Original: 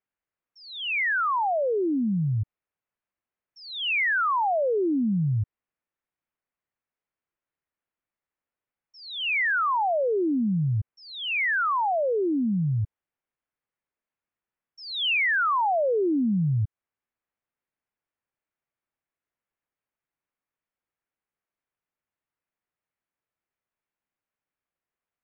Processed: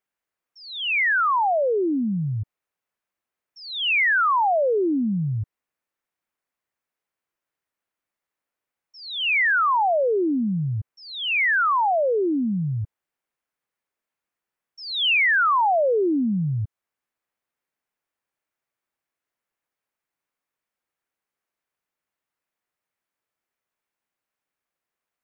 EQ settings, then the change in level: bass shelf 200 Hz -7.5 dB; +4.5 dB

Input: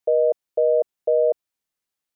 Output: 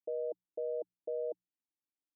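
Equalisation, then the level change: cascade formant filter u; hum notches 60/120/180 Hz; -1.5 dB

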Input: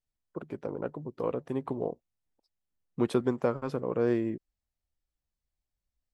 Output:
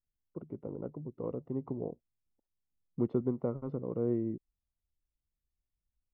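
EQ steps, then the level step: Savitzky-Golay filter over 65 samples; distance through air 240 m; peaking EQ 890 Hz -10 dB 2.2 oct; 0.0 dB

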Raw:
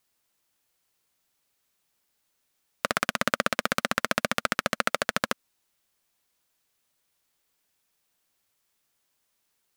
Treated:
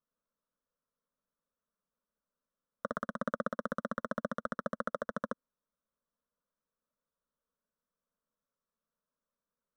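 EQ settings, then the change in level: boxcar filter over 19 samples; static phaser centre 520 Hz, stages 8; -4.0 dB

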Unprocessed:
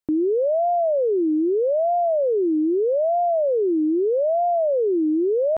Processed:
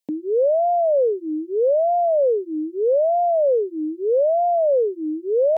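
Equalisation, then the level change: high-pass 240 Hz; peaking EQ 680 Hz -4.5 dB 0.71 oct; static phaser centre 350 Hz, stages 6; +6.5 dB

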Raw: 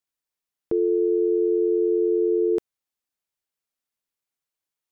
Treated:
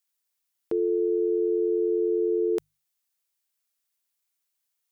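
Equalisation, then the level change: tilt EQ +2.5 dB/octave; hum notches 50/100/150 Hz; 0.0 dB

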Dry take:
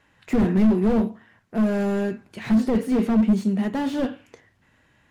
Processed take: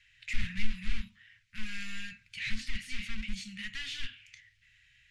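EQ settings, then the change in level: elliptic band-stop 120–2200 Hz, stop band 60 dB; distance through air 83 m; peaking EQ 110 Hz -15 dB 2.4 oct; +6.0 dB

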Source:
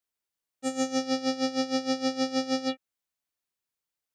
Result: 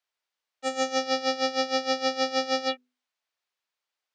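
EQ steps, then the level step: three-band isolator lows -16 dB, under 450 Hz, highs -17 dB, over 5.8 kHz; hum notches 50/100/150/200/250/300/350/400/450/500 Hz; +6.5 dB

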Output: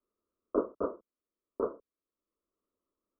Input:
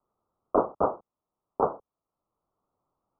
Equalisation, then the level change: distance through air 350 m; bass shelf 120 Hz -6 dB; static phaser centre 330 Hz, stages 4; -1.0 dB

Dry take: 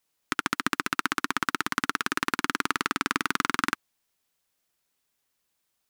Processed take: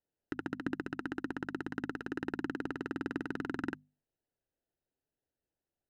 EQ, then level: boxcar filter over 39 samples; peaking EQ 200 Hz -6 dB 0.44 oct; hum notches 50/100/150/200/250 Hz; 0.0 dB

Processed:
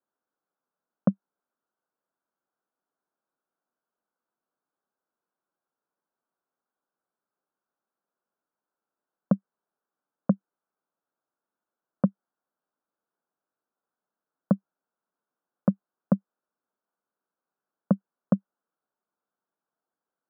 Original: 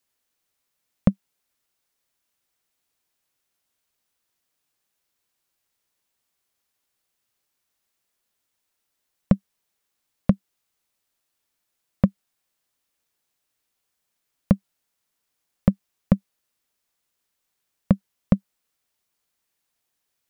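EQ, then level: high-pass 170 Hz 24 dB/octave; elliptic low-pass 1.5 kHz; -1.5 dB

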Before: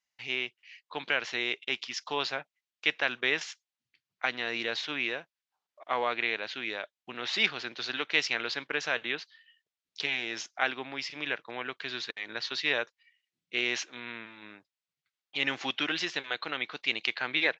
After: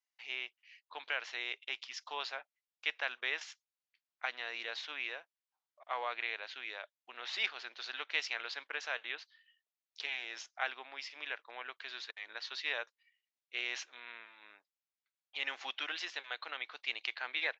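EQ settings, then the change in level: band-pass filter 680 Hz, Q 0.96; differentiator; +12.0 dB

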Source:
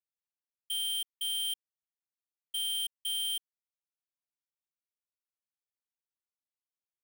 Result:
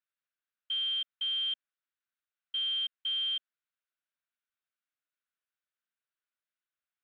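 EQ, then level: cabinet simulation 170–4900 Hz, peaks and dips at 240 Hz +6 dB, 620 Hz +9 dB, 1.5 kHz +8 dB, 3.7 kHz +9 dB; high-order bell 1.8 kHz +11 dB; -8.0 dB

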